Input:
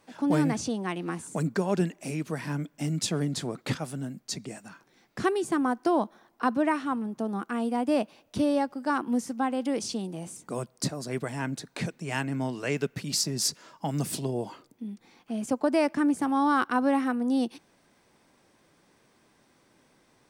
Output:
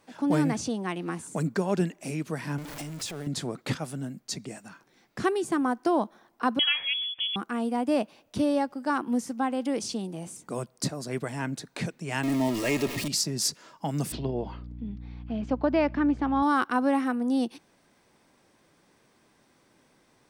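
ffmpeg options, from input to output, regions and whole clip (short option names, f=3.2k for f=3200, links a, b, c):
-filter_complex "[0:a]asettb=1/sr,asplit=3[a][b][c];[a]atrim=end=2.584[d];[b]atrim=start=2.58:end=3.27,asetpts=PTS-STARTPTS,afade=t=in:d=0.004:c=qsin,afade=t=out:st=0.686:d=0.004:c=qsin,aeval=exprs='val(0)+0.5*0.0237*sgn(val(0))':c=same,acompressor=threshold=-31dB:ratio=5:attack=3.2:release=140:knee=1:detection=peak,equalizer=f=210:w=1.6:g=-9.5[e];[c]atrim=start=3.266[f];[d][e]acrossfade=d=0.004:c1=hsin:c2=qsin[g];[g][f]acrossfade=d=0.004:c1=qsin:c2=hsin,asettb=1/sr,asplit=3[h][i][j];[h]atrim=end=6.594[k];[i]atrim=start=6.59:end=7.36,asetpts=PTS-STARTPTS,afade=t=in:d=0.004:c=qsin,afade=t=out:st=0.766:d=0.004:c=qsin,lowpass=f=3.1k:t=q:w=0.5098,lowpass=f=3.1k:t=q:w=0.6013,lowpass=f=3.1k:t=q:w=0.9,lowpass=f=3.1k:t=q:w=2.563,afreqshift=-3600,acompressor=mode=upward:threshold=-33dB:ratio=2.5:attack=3.2:release=140:knee=2.83:detection=peak[l];[j]atrim=start=7.356[m];[k][l]acrossfade=d=0.004:c1=hsin:c2=qsin[n];[n][m]acrossfade=d=0.004:c1=qsin:c2=hsin,asettb=1/sr,asplit=3[o][p][q];[o]atrim=end=12.234[r];[p]atrim=start=12.23:end=13.08,asetpts=PTS-STARTPTS,afade=t=in:d=0.004:c=qsin,afade=t=out:st=0.846:d=0.004:c=qsin,aeval=exprs='val(0)+0.5*0.0355*sgn(val(0))':c=same,asuperstop=centerf=1500:order=12:qfactor=7.2,aecho=1:1:3.2:0.46,atrim=end_sample=37485[s];[q]atrim=start=13.076[t];[r][s]acrossfade=d=0.004:c1=hsin:c2=qsin[u];[u][t]acrossfade=d=0.004:c1=qsin:c2=hsin,asettb=1/sr,asplit=3[v][w][x];[v]atrim=end=14.124[y];[w]atrim=start=14.12:end=16.43,asetpts=PTS-STARTPTS,afade=t=in:d=0.004:c=qsin,afade=t=out:st=2.306:d=0.004:c=qsin,lowpass=f=4.1k:w=0.5412,lowpass=f=4.1k:w=1.3066,aeval=exprs='val(0)+0.0112*(sin(2*PI*60*n/s)+sin(2*PI*2*60*n/s)/2+sin(2*PI*3*60*n/s)/3+sin(2*PI*4*60*n/s)/4+sin(2*PI*5*60*n/s)/5)':c=same[z];[x]atrim=start=16.426[aa];[y][z]acrossfade=d=0.004:c1=hsin:c2=qsin[ab];[ab][aa]acrossfade=d=0.004:c1=qsin:c2=hsin"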